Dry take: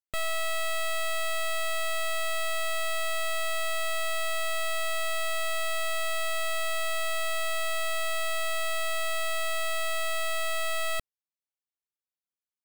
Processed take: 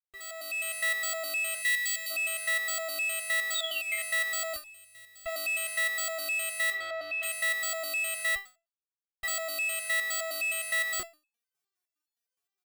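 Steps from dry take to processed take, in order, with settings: opening faded in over 0.92 s; 1.62–2.11 spectral gain 250–1900 Hz -19 dB; 4.56–5.26 passive tone stack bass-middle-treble 10-0-1; 8.36–9.23 mute; HPF 62 Hz 12 dB/oct; comb 2.6 ms, depth 73%; 3.54–3.99 painted sound fall 1900–3900 Hz -31 dBFS; 6.72–7.23 air absorption 270 m; maximiser +24 dB; stepped resonator 9.7 Hz 140–860 Hz; gain -6.5 dB

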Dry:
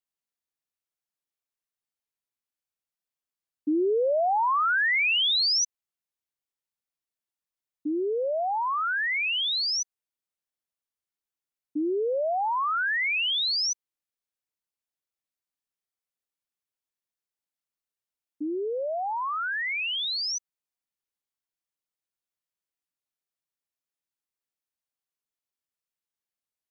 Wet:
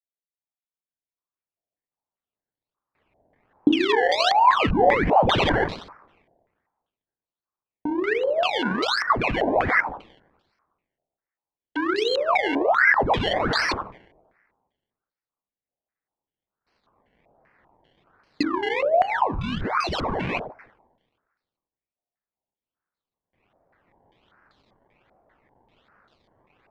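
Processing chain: recorder AGC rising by 8.1 dB/s; on a send: darkening echo 84 ms, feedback 57%, low-pass 1000 Hz, level -16 dB; on the sum: gate with hold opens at -57 dBFS; in parallel at -3 dB: bit-crush 7-bit; 9.35–11.94 on the sum: steep high-pass 260 Hz 96 dB/oct; two-slope reverb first 0.63 s, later 1.7 s, from -23 dB, DRR 3.5 dB; decimation with a swept rate 24×, swing 100% 1.3 Hz; stepped low-pass 5.1 Hz 690–4100 Hz; gain -5 dB

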